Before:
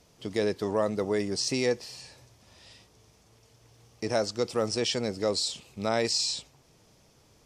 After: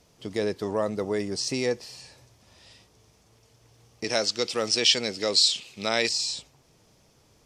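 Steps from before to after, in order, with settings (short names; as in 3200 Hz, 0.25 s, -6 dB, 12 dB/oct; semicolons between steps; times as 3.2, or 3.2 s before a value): 4.04–6.09 weighting filter D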